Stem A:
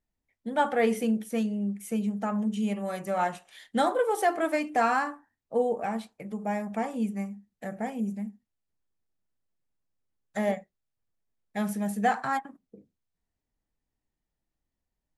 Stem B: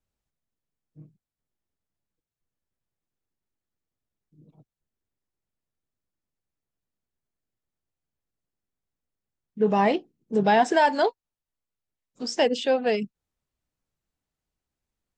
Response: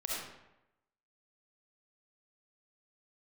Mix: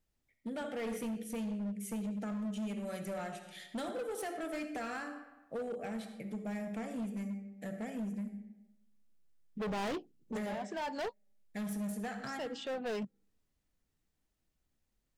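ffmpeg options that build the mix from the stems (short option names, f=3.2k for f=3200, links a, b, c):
-filter_complex "[0:a]acompressor=threshold=-30dB:ratio=2.5,equalizer=f=940:t=o:w=0.86:g=-13,volume=-1.5dB,asplit=3[a][b][c];[b]volume=-8dB[d];[1:a]volume=-1dB[e];[c]apad=whole_len=669021[f];[e][f]sidechaincompress=threshold=-52dB:ratio=6:attack=31:release=547[g];[2:a]atrim=start_sample=2205[h];[d][h]afir=irnorm=-1:irlink=0[i];[a][g][i]amix=inputs=3:normalize=0,asoftclip=type=hard:threshold=-30.5dB,alimiter=level_in=10.5dB:limit=-24dB:level=0:latency=1:release=318,volume=-10.5dB"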